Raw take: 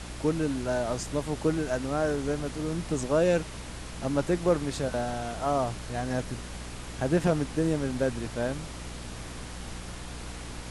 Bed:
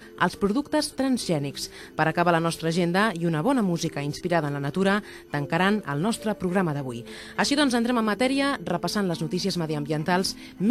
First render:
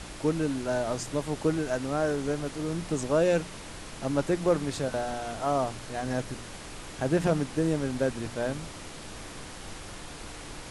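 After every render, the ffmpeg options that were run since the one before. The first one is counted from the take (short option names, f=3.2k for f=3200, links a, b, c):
-af "bandreject=f=60:t=h:w=4,bandreject=f=120:t=h:w=4,bandreject=f=180:t=h:w=4,bandreject=f=240:t=h:w=4"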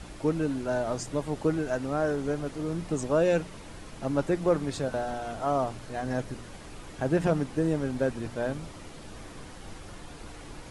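-af "afftdn=nr=7:nf=-43"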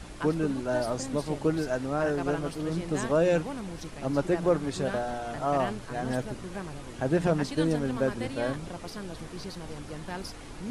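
-filter_complex "[1:a]volume=-14.5dB[a];[0:a][a]amix=inputs=2:normalize=0"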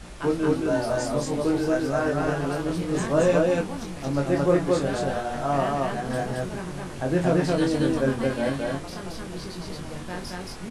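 -filter_complex "[0:a]asplit=2[a][b];[b]adelay=22,volume=-3.5dB[c];[a][c]amix=inputs=2:normalize=0,asplit=2[d][e];[e]aecho=0:1:34.99|224.5:0.316|0.891[f];[d][f]amix=inputs=2:normalize=0"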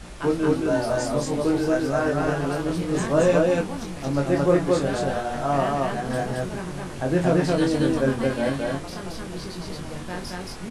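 -af "volume=1.5dB"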